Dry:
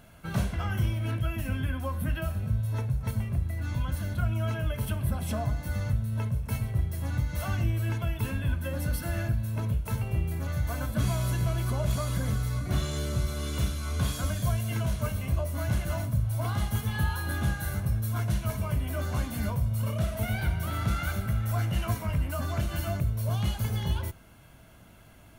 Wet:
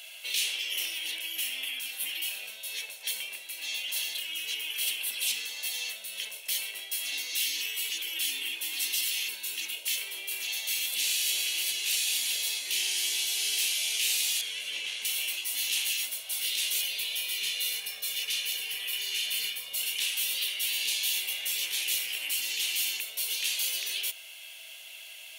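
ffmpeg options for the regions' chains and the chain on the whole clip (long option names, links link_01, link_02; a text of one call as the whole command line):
ffmpeg -i in.wav -filter_complex "[0:a]asettb=1/sr,asplit=3[link_01][link_02][link_03];[link_01]atrim=end=7.124[link_04];[link_02]atrim=start=7.12:end=9.96,asetpts=PTS-STARTPTS,afade=type=in:duration=0.004:curve=qsin,afade=type=out:start_time=2.836:duration=0.004:curve=qsin,equalizer=frequency=470:width_type=o:width=0.76:gain=13,aecho=1:1:3.2:0.58,atrim=end_sample=125244[link_05];[link_03]atrim=start=9.956[link_06];[link_04][link_05]acrossfade=duration=0.004:curve1=hsin:curve2=qsin[link_07];[link_07][link_06]acrossfade=duration=0.004:curve1=qsin:curve2=hsin,asettb=1/sr,asplit=3[link_08][link_09][link_10];[link_08]atrim=end=14.414[link_11];[link_09]atrim=start=14.41:end=15.05,asetpts=PTS-STARTPTS,afade=type=in:duration=0.004:curve=qsin,afade=type=out:start_time=0.636:duration=0.004:curve=qsin,lowpass=9100,acrossover=split=2800[link_12][link_13];[link_13]acompressor=threshold=-57dB:ratio=4:attack=1:release=60[link_14];[link_12][link_14]amix=inputs=2:normalize=0,equalizer=frequency=970:width_type=o:width=0.39:gain=-8.5[link_15];[link_10]atrim=start=15.046[link_16];[link_11][link_15]acrossfade=duration=0.004:curve1=hsin:curve2=qsin[link_17];[link_17][link_16]acrossfade=duration=0.004:curve1=qsin:curve2=hsin,asettb=1/sr,asplit=3[link_18][link_19][link_20];[link_18]atrim=end=16.824[link_21];[link_19]atrim=start=16.82:end=19.73,asetpts=PTS-STARTPTS,afade=type=in:duration=0.004:curve=qsin,afade=type=out:start_time=2.906:duration=0.004:curve=qsin,bass=frequency=250:gain=4,treble=frequency=4000:gain=-7,aecho=1:1:1.7:0.88,atrim=end_sample=128331[link_22];[link_20]atrim=start=19.726[link_23];[link_21][link_22]acrossfade=duration=0.004:curve1=hsin:curve2=qsin[link_24];[link_24][link_23]acrossfade=duration=0.004:curve1=qsin:curve2=hsin,highpass=frequency=570:width=0.5412,highpass=frequency=570:width=1.3066,afftfilt=real='re*lt(hypot(re,im),0.0158)':imag='im*lt(hypot(re,im),0.0158)':win_size=1024:overlap=0.75,highshelf=frequency=1900:width_type=q:width=3:gain=14" out.wav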